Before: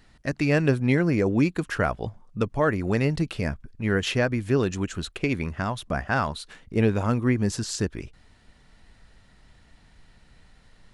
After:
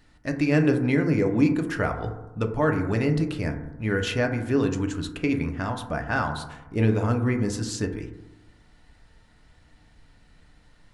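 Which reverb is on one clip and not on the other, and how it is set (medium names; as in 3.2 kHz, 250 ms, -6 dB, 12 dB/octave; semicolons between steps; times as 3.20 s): FDN reverb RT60 1 s, low-frequency decay 1.1×, high-frequency decay 0.25×, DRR 4 dB; trim -2.5 dB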